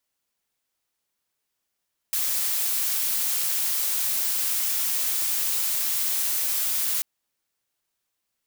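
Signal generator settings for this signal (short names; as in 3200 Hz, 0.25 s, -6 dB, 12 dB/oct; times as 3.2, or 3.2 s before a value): noise blue, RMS -25 dBFS 4.89 s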